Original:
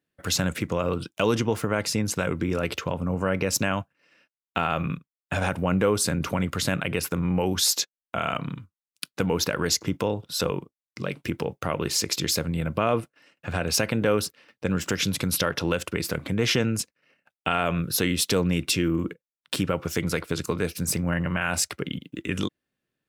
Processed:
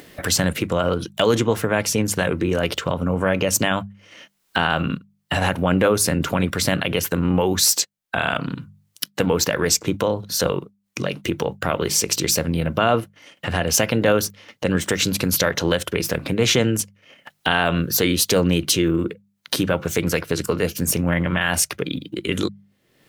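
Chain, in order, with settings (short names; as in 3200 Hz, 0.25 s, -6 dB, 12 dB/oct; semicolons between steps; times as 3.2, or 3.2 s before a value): notches 50/100/150/200 Hz; formant shift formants +2 st; upward compressor, threshold -27 dBFS; gain +5.5 dB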